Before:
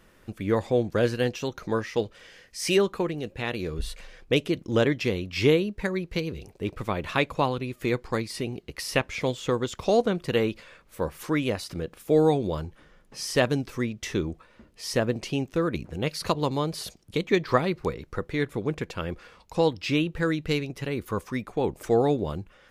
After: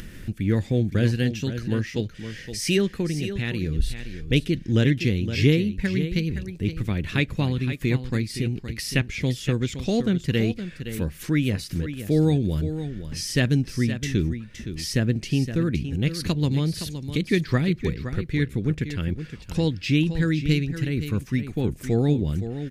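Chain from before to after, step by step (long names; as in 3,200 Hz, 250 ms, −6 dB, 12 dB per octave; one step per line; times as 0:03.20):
drawn EQ curve 140 Hz 0 dB, 280 Hz −5 dB, 540 Hz −17 dB, 1,100 Hz −22 dB, 1,700 Hz −8 dB
upward compression, threshold −36 dBFS
single-tap delay 517 ms −10.5 dB
level +9 dB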